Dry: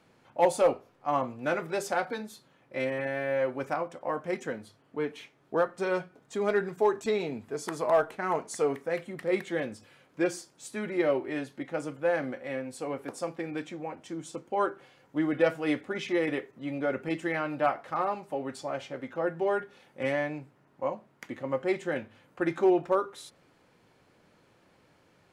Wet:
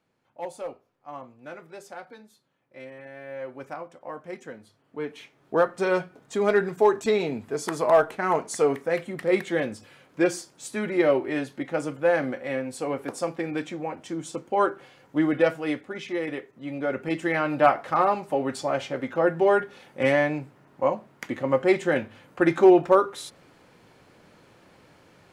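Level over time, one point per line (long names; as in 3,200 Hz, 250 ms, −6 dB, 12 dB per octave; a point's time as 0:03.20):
0:03.04 −11.5 dB
0:03.61 −5.5 dB
0:04.55 −5.5 dB
0:05.64 +5.5 dB
0:15.25 +5.5 dB
0:15.87 −1.5 dB
0:16.41 −1.5 dB
0:17.66 +8 dB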